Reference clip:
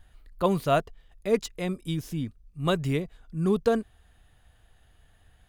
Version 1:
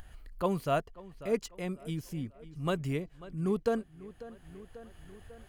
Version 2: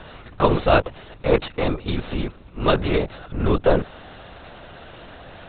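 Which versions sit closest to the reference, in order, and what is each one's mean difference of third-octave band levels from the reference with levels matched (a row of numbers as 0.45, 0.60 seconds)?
1, 2; 2.0, 12.0 decibels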